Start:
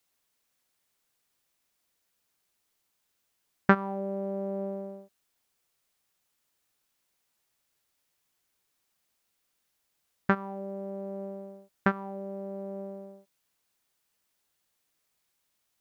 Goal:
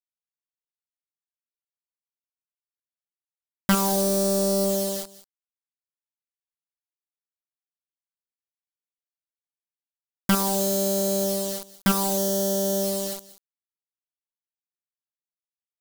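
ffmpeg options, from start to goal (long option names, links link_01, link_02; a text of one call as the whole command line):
ffmpeg -i in.wav -af "agate=range=-33dB:threshold=-45dB:ratio=3:detection=peak,dynaudnorm=framelen=560:gausssize=5:maxgain=4.5dB,acrusher=bits=7:mix=0:aa=0.000001,aexciter=amount=8:drive=4.5:freq=3400,asoftclip=type=tanh:threshold=-12dB,aeval=exprs='0.251*(cos(1*acos(clip(val(0)/0.251,-1,1)))-cos(1*PI/2))+0.1*(cos(5*acos(clip(val(0)/0.251,-1,1)))-cos(5*PI/2))':channel_layout=same,aecho=1:1:187:0.0891,adynamicequalizer=threshold=0.00891:dfrequency=2000:dqfactor=0.7:tfrequency=2000:tqfactor=0.7:attack=5:release=100:ratio=0.375:range=3:mode=cutabove:tftype=highshelf" out.wav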